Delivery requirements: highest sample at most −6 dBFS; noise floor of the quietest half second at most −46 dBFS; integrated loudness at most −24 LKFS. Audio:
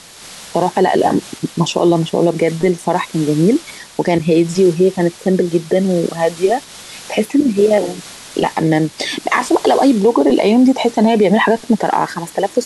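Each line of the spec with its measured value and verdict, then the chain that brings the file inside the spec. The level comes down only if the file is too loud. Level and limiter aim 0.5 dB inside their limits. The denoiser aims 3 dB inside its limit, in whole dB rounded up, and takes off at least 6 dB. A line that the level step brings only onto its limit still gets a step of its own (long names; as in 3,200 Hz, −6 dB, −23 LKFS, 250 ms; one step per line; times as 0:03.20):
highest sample −3.0 dBFS: out of spec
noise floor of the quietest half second −36 dBFS: out of spec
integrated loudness −15.0 LKFS: out of spec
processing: broadband denoise 6 dB, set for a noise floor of −36 dBFS
level −9.5 dB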